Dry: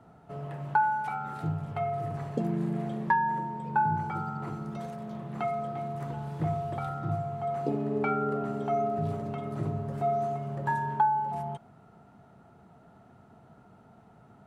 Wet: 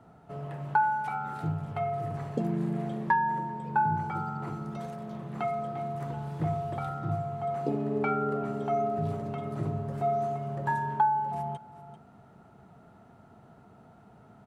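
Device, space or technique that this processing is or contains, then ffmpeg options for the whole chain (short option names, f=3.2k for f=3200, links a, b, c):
ducked delay: -filter_complex "[0:a]asplit=3[a][b][c];[b]adelay=391,volume=-5.5dB[d];[c]apad=whole_len=655187[e];[d][e]sidechaincompress=threshold=-48dB:ratio=8:attack=16:release=572[f];[a][f]amix=inputs=2:normalize=0"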